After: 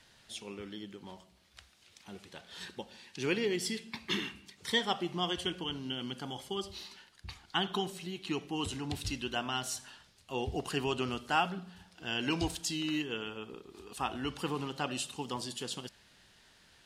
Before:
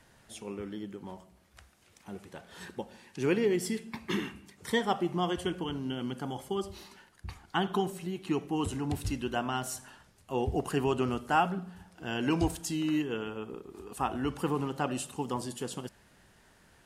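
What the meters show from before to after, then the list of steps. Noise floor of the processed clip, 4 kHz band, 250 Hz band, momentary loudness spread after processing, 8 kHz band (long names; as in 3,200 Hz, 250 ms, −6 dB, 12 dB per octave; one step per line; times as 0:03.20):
−63 dBFS, +5.5 dB, −5.5 dB, 17 LU, 0.0 dB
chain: parametric band 3,900 Hz +13 dB 1.7 octaves
level −5.5 dB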